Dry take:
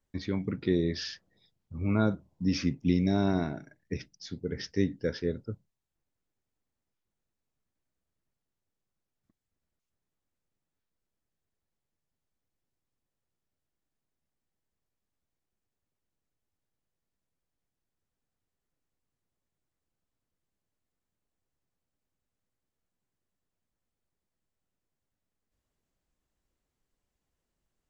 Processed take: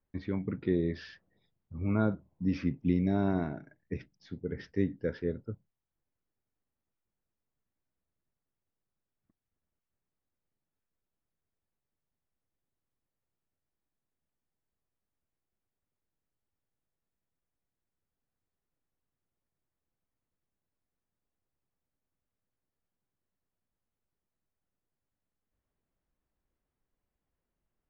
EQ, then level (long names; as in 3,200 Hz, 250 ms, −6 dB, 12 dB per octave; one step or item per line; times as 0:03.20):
low-pass filter 2,200 Hz 12 dB per octave
−2.0 dB